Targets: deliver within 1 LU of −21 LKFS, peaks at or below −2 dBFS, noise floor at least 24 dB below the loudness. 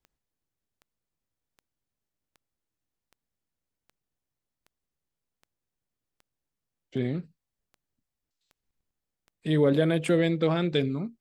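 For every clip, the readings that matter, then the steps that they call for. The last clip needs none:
number of clicks 15; integrated loudness −26.0 LKFS; sample peak −11.5 dBFS; target loudness −21.0 LKFS
→ click removal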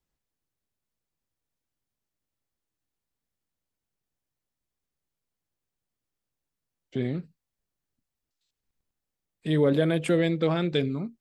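number of clicks 0; integrated loudness −26.0 LKFS; sample peak −11.5 dBFS; target loudness −21.0 LKFS
→ level +5 dB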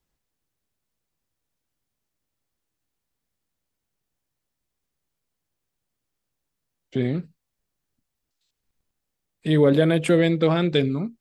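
integrated loudness −21.0 LKFS; sample peak −6.5 dBFS; background noise floor −82 dBFS

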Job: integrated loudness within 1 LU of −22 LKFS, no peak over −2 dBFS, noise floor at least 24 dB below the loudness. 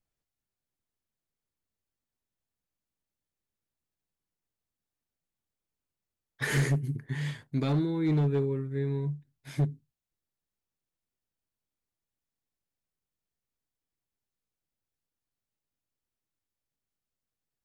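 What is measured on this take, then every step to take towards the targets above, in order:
share of clipped samples 0.4%; peaks flattened at −21.0 dBFS; integrated loudness −30.0 LKFS; sample peak −21.0 dBFS; target loudness −22.0 LKFS
→ clipped peaks rebuilt −21 dBFS
level +8 dB

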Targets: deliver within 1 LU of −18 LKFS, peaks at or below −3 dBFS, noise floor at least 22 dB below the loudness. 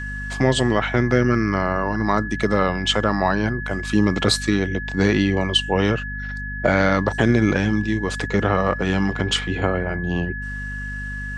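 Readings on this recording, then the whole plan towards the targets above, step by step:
mains hum 50 Hz; hum harmonics up to 250 Hz; level of the hum −29 dBFS; interfering tone 1,700 Hz; level of the tone −30 dBFS; integrated loudness −21.0 LKFS; sample peak −3.5 dBFS; target loudness −18.0 LKFS
→ mains-hum notches 50/100/150/200/250 Hz
notch filter 1,700 Hz, Q 30
level +3 dB
brickwall limiter −3 dBFS

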